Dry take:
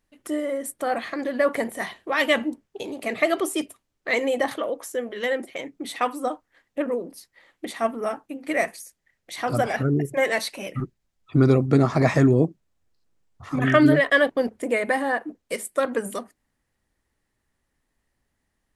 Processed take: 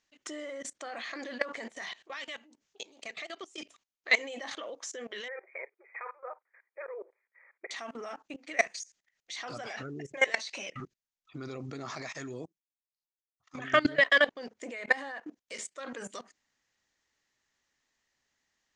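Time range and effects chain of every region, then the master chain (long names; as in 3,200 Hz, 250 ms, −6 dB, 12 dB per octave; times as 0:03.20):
0:01.97–0:03.58: high-shelf EQ 3,800 Hz +5.5 dB + downward compressor 2 to 1, threshold −43 dBFS
0:05.28–0:07.71: linear-phase brick-wall band-pass 350–2,500 Hz + notch filter 740 Hz, Q 11
0:11.95–0:13.55: high-shelf EQ 2,000 Hz +7 dB + expander for the loud parts 2.5 to 1, over −30 dBFS
whole clip: elliptic low-pass filter 6,700 Hz, stop band 60 dB; spectral tilt +3.5 dB per octave; output level in coarse steps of 20 dB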